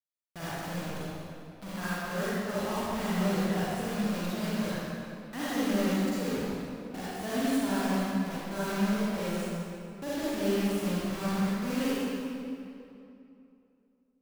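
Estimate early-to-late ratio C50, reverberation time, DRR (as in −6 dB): −8.0 dB, 2.8 s, −11.0 dB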